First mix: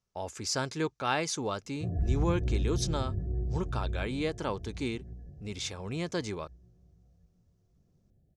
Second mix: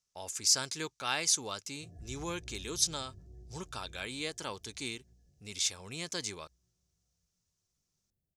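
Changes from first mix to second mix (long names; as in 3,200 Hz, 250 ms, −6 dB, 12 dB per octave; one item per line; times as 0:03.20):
speech +9.5 dB
master: add first-order pre-emphasis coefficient 0.9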